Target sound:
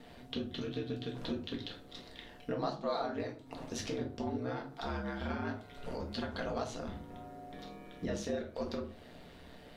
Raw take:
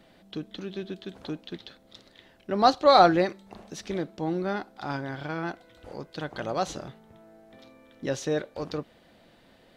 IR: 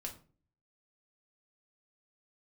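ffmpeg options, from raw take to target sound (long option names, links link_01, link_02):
-filter_complex "[0:a]aeval=exprs='val(0)*sin(2*PI*64*n/s)':channel_layout=same,acompressor=threshold=-41dB:ratio=6[link_01];[1:a]atrim=start_sample=2205[link_02];[link_01][link_02]afir=irnorm=-1:irlink=0,volume=8.5dB"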